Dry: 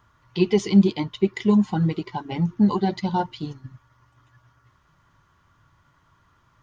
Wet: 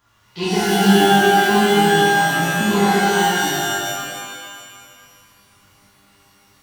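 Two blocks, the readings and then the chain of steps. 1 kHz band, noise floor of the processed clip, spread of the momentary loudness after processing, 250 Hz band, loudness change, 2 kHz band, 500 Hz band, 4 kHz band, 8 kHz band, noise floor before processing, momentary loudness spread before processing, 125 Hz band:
+15.0 dB, -55 dBFS, 15 LU, +2.0 dB, +6.5 dB, +21.5 dB, +8.0 dB, +16.5 dB, n/a, -63 dBFS, 13 LU, +1.5 dB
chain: spectral whitening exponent 0.6; shimmer reverb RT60 1.8 s, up +12 st, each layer -2 dB, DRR -10 dB; gain -7.5 dB

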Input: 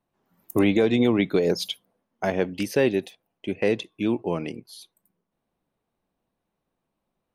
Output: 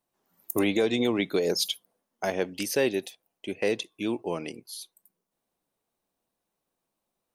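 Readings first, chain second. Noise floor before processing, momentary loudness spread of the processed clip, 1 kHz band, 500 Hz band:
-81 dBFS, 16 LU, -3.0 dB, -4.0 dB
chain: tone controls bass -7 dB, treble +10 dB; gain -3 dB

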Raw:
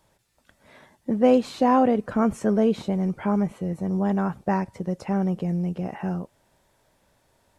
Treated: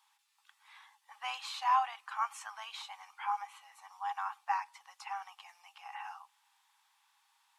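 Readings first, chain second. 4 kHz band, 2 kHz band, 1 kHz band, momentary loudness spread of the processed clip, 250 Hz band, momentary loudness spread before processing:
n/a, -4.5 dB, -5.5 dB, 22 LU, under -40 dB, 11 LU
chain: rippled Chebyshev high-pass 790 Hz, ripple 6 dB

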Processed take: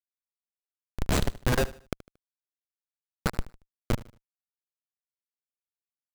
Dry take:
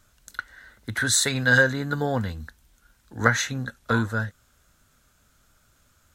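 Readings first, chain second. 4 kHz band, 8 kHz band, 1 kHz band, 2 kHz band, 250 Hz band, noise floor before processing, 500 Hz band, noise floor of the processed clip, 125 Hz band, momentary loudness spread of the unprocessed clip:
-10.5 dB, -14.5 dB, -8.0 dB, -16.5 dB, -7.0 dB, -64 dBFS, -6.5 dB, under -85 dBFS, -6.0 dB, 19 LU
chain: reverb removal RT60 0.87 s; low-pass opened by the level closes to 650 Hz, open at -22.5 dBFS; in parallel at +0.5 dB: compressor 16:1, threshold -30 dBFS, peak gain reduction 18 dB; on the sum: Schmitt trigger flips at -12.5 dBFS; power-law curve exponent 1.4; on a send: feedback echo 76 ms, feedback 34%, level -18 dB; on the sum: gain +5.5 dB

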